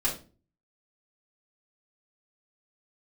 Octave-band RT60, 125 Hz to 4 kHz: 0.60 s, 0.50 s, 0.40 s, 0.30 s, 0.30 s, 0.30 s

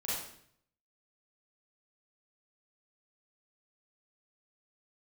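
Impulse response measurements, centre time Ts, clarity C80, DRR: 69 ms, 3.5 dB, -9.5 dB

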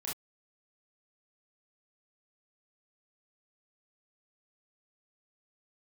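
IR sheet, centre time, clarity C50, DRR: 35 ms, 4.0 dB, -5.5 dB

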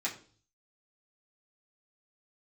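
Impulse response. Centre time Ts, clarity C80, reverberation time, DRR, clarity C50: 16 ms, 16.0 dB, 0.45 s, -6.5 dB, 11.5 dB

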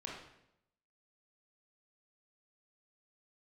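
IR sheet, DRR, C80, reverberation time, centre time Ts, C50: -3.5 dB, 5.5 dB, 0.80 s, 52 ms, 1.5 dB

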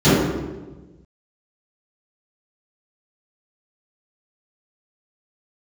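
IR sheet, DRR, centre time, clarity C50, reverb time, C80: -18.0 dB, 108 ms, -4.0 dB, 1.2 s, 0.5 dB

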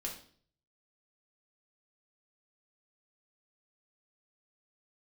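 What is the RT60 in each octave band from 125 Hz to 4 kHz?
0.80 s, 0.60 s, 0.55 s, 0.45 s, 0.45 s, 0.50 s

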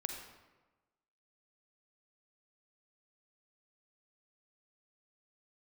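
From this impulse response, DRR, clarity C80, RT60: 3.5 dB, 6.0 dB, 1.2 s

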